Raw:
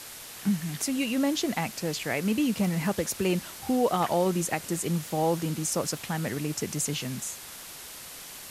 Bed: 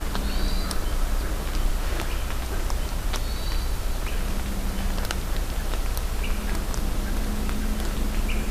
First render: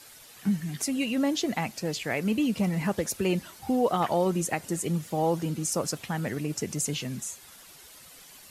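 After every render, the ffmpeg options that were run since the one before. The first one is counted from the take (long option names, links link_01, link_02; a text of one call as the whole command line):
ffmpeg -i in.wav -af "afftdn=noise_reduction=10:noise_floor=-43" out.wav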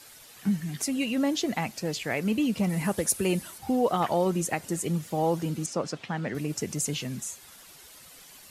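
ffmpeg -i in.wav -filter_complex "[0:a]asettb=1/sr,asplit=3[link_01][link_02][link_03];[link_01]atrim=end=2.694[link_04];[link_02]atrim=start=2.69:end=3.58,asetpts=PTS-STARTPTS,afade=type=in:duration=0.004:curve=qsin,afade=type=out:start_time=0.886:duration=0.004:curve=qsin,equalizer=frequency=10000:width_type=o:width=0.71:gain=10.5[link_05];[link_03]atrim=start=3.576[link_06];[link_04][link_05]acrossfade=duration=0.004:curve1=hsin:curve2=qsin[link_07];[link_07][link_06]acrossfade=duration=0.004:curve1=qsin:curve2=hsin,asettb=1/sr,asplit=3[link_08][link_09][link_10];[link_08]atrim=end=5.664[link_11];[link_09]atrim=start=5.66:end=6.35,asetpts=PTS-STARTPTS,afade=type=in:duration=0.004:curve=qsin,afade=type=out:start_time=0.686:duration=0.004:curve=qsin,highpass=130,lowpass=4400[link_12];[link_10]atrim=start=6.346[link_13];[link_11][link_12]acrossfade=duration=0.004:curve1=hsin:curve2=qsin[link_14];[link_14][link_13]acrossfade=duration=0.004:curve1=qsin:curve2=hsin" out.wav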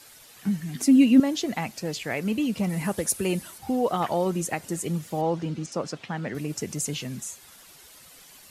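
ffmpeg -i in.wav -filter_complex "[0:a]asettb=1/sr,asplit=3[link_01][link_02][link_03];[link_01]atrim=end=0.754[link_04];[link_02]atrim=start=0.75:end=1.2,asetpts=PTS-STARTPTS,afade=type=in:duration=0.004:curve=qsin,afade=type=out:start_time=0.446:duration=0.004:curve=qsin,equalizer=frequency=260:width_type=o:width=0.73:gain=14[link_05];[link_03]atrim=start=1.196[link_06];[link_04][link_05]acrossfade=duration=0.004:curve1=hsin:curve2=qsin[link_07];[link_07][link_06]acrossfade=duration=0.004:curve1=qsin:curve2=hsin,asettb=1/sr,asplit=3[link_08][link_09][link_10];[link_08]atrim=end=5.214[link_11];[link_09]atrim=start=5.21:end=5.72,asetpts=PTS-STARTPTS,afade=type=in:duration=0.004:curve=qsin,afade=type=out:start_time=0.506:duration=0.004:curve=qsin,lowpass=4900[link_12];[link_10]atrim=start=5.716[link_13];[link_11][link_12]acrossfade=duration=0.004:curve1=hsin:curve2=qsin[link_14];[link_14][link_13]acrossfade=duration=0.004:curve1=qsin:curve2=hsin" out.wav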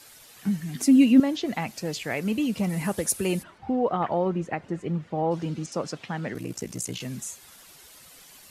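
ffmpeg -i in.wav -filter_complex "[0:a]asettb=1/sr,asplit=3[link_01][link_02][link_03];[link_01]atrim=end=1.124[link_04];[link_02]atrim=start=1.12:end=1.68,asetpts=PTS-STARTPTS,afade=type=in:duration=0.004:curve=qsin,afade=type=out:start_time=0.556:duration=0.004:curve=qsin,acrossover=split=4600[link_05][link_06];[link_06]acompressor=threshold=-50dB:ratio=4:attack=1:release=60[link_07];[link_05][link_07]amix=inputs=2:normalize=0[link_08];[link_03]atrim=start=1.676[link_09];[link_04][link_08]acrossfade=duration=0.004:curve1=hsin:curve2=qsin[link_10];[link_10][link_09]acrossfade=duration=0.004:curve1=qsin:curve2=hsin,asplit=3[link_11][link_12][link_13];[link_11]afade=type=out:start_time=3.42:duration=0.02[link_14];[link_12]lowpass=2100,afade=type=in:start_time=3.42:duration=0.02,afade=type=out:start_time=5.3:duration=0.02[link_15];[link_13]afade=type=in:start_time=5.3:duration=0.02[link_16];[link_14][link_15][link_16]amix=inputs=3:normalize=0,asplit=3[link_17][link_18][link_19];[link_17]afade=type=out:start_time=6.33:duration=0.02[link_20];[link_18]aeval=exprs='val(0)*sin(2*PI*30*n/s)':channel_layout=same,afade=type=in:start_time=6.33:duration=0.02,afade=type=out:start_time=6.99:duration=0.02[link_21];[link_19]afade=type=in:start_time=6.99:duration=0.02[link_22];[link_20][link_21][link_22]amix=inputs=3:normalize=0" out.wav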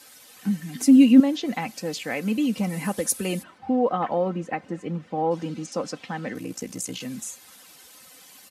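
ffmpeg -i in.wav -af "highpass=110,aecho=1:1:3.9:0.48" out.wav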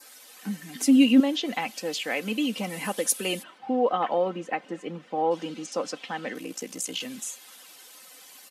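ffmpeg -i in.wav -af "highpass=300,adynamicequalizer=threshold=0.00282:dfrequency=3100:dqfactor=2.7:tfrequency=3100:tqfactor=2.7:attack=5:release=100:ratio=0.375:range=3.5:mode=boostabove:tftype=bell" out.wav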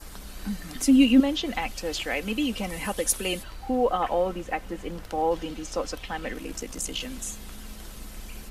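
ffmpeg -i in.wav -i bed.wav -filter_complex "[1:a]volume=-15.5dB[link_01];[0:a][link_01]amix=inputs=2:normalize=0" out.wav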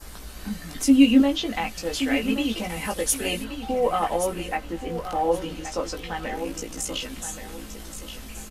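ffmpeg -i in.wav -filter_complex "[0:a]asplit=2[link_01][link_02];[link_02]adelay=18,volume=-4dB[link_03];[link_01][link_03]amix=inputs=2:normalize=0,asplit=2[link_04][link_05];[link_05]aecho=0:1:1126|2252|3378:0.316|0.0791|0.0198[link_06];[link_04][link_06]amix=inputs=2:normalize=0" out.wav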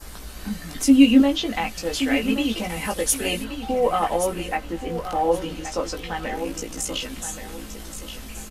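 ffmpeg -i in.wav -af "volume=2dB" out.wav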